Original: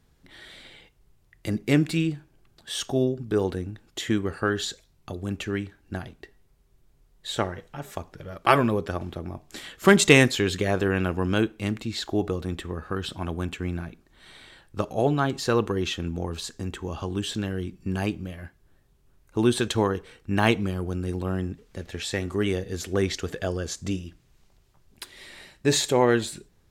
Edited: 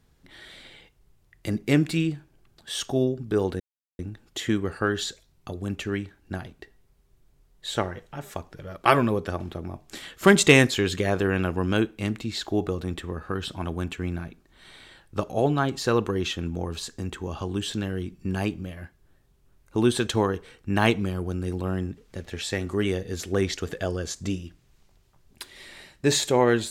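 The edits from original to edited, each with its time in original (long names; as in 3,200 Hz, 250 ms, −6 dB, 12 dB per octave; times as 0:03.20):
0:03.60: splice in silence 0.39 s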